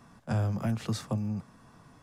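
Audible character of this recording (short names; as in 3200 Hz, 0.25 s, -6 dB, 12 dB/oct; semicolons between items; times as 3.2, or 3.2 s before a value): noise floor -58 dBFS; spectral tilt -7.5 dB/oct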